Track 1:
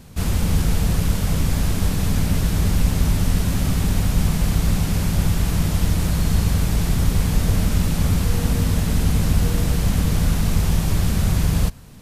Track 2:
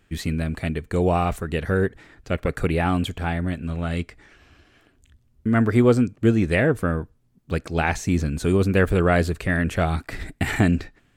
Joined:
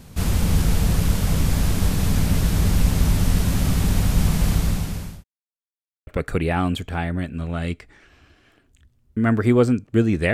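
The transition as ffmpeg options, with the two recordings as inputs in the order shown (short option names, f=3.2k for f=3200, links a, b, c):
-filter_complex "[0:a]apad=whole_dur=10.33,atrim=end=10.33,asplit=2[a][b];[a]atrim=end=5.24,asetpts=PTS-STARTPTS,afade=t=out:st=4.51:d=0.73[c];[b]atrim=start=5.24:end=6.07,asetpts=PTS-STARTPTS,volume=0[d];[1:a]atrim=start=2.36:end=6.62,asetpts=PTS-STARTPTS,afade=t=in:d=0.004:c=hsin[e];[c][d][e]concat=n=3:v=0:a=1"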